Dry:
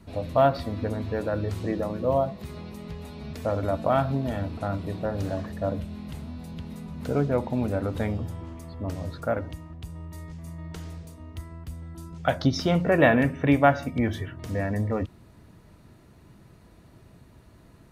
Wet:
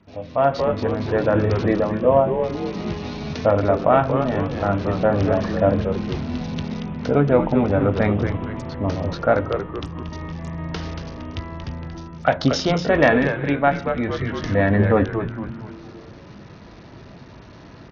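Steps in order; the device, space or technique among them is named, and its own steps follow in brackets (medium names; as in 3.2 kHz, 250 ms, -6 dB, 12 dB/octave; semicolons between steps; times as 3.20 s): 10.50–11.80 s: steep low-pass 6.3 kHz 36 dB/octave; bass shelf 280 Hz -2.5 dB; doubling 20 ms -13 dB; frequency-shifting echo 231 ms, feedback 47%, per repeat -110 Hz, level -7 dB; Bluetooth headset (high-pass 100 Hz 6 dB/octave; level rider gain up to 14.5 dB; resampled via 16 kHz; trim -1.5 dB; SBC 64 kbps 48 kHz)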